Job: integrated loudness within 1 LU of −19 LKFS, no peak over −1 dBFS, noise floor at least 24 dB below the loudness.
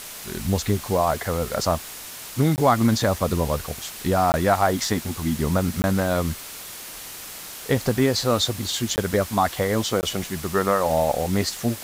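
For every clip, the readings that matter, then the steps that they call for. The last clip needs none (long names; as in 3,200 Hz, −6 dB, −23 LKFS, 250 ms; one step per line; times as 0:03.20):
number of dropouts 5; longest dropout 19 ms; background noise floor −38 dBFS; target noise floor −47 dBFS; integrated loudness −23.0 LKFS; sample peak −5.5 dBFS; target loudness −19.0 LKFS
→ repair the gap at 0:02.56/0:04.32/0:05.82/0:08.96/0:10.01, 19 ms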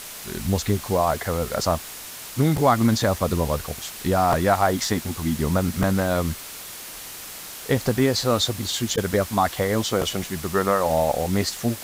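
number of dropouts 0; background noise floor −38 dBFS; target noise floor −47 dBFS
→ noise reduction from a noise print 9 dB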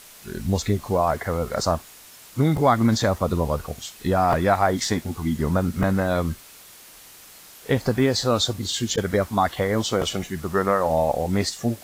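background noise floor −47 dBFS; integrated loudness −23.0 LKFS; sample peak −6.0 dBFS; target loudness −19.0 LKFS
→ level +4 dB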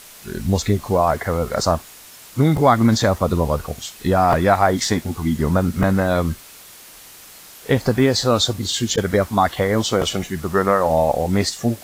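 integrated loudness −19.0 LKFS; sample peak −2.0 dBFS; background noise floor −43 dBFS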